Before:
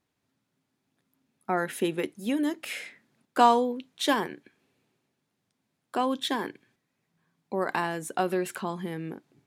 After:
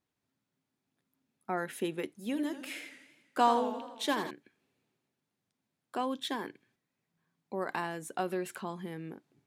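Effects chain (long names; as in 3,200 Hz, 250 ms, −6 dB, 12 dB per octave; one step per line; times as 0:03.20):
0:02.22–0:04.31: feedback echo with a swinging delay time 84 ms, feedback 62%, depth 131 cents, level −11 dB
level −6.5 dB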